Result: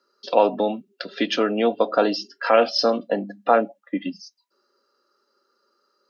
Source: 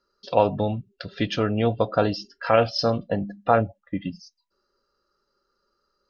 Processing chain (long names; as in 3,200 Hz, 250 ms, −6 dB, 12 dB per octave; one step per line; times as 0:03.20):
in parallel at −2 dB: brickwall limiter −16.5 dBFS, peak gain reduction 11.5 dB
on the sum: Butterworth high-pass 230 Hz 36 dB per octave